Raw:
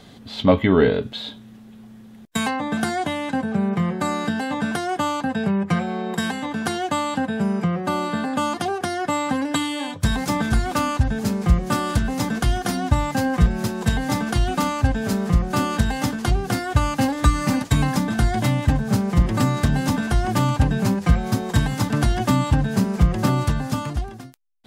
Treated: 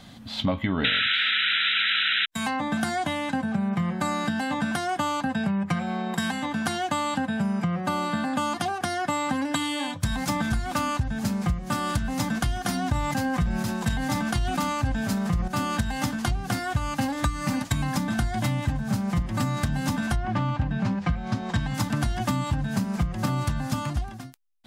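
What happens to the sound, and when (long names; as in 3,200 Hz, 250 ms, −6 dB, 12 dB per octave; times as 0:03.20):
0:00.84–0:02.26: sound drawn into the spectrogram noise 1,300–4,000 Hz −10 dBFS
0:12.82–0:15.48: level that may fall only so fast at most 48 dB per second
0:20.15–0:21.73: low-pass filter 2,500 Hz → 5,600 Hz
whole clip: parametric band 420 Hz −14 dB 0.43 octaves; downward compressor, threshold −22 dBFS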